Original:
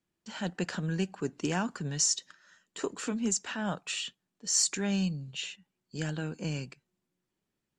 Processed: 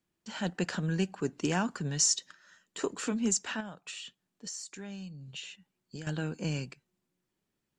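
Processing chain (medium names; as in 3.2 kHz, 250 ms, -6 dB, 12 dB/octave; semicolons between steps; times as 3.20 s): 3.60–6.07 s: compression 20:1, threshold -40 dBFS, peak gain reduction 18.5 dB; trim +1 dB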